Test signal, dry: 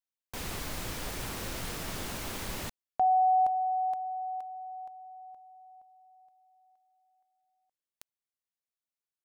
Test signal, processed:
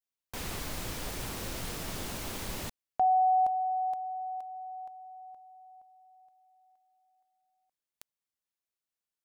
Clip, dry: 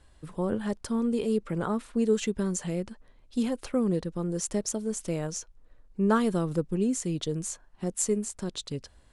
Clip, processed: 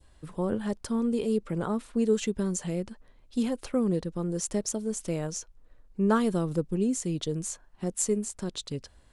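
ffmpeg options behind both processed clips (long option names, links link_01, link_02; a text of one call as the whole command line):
ffmpeg -i in.wav -af "adynamicequalizer=threshold=0.00631:dfrequency=1600:dqfactor=0.88:tfrequency=1600:tqfactor=0.88:attack=5:release=100:ratio=0.375:range=2:mode=cutabove:tftype=bell" out.wav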